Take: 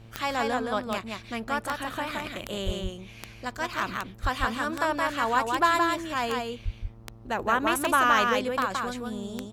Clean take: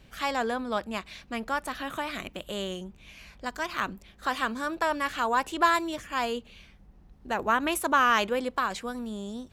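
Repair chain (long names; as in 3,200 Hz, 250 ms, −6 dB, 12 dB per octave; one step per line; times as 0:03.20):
click removal
hum removal 113.3 Hz, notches 12
0:02.65–0:02.77: high-pass filter 140 Hz 24 dB per octave
0:04.22–0:04.34: high-pass filter 140 Hz 24 dB per octave
0:06.64–0:06.76: high-pass filter 140 Hz 24 dB per octave
echo removal 170 ms −3.5 dB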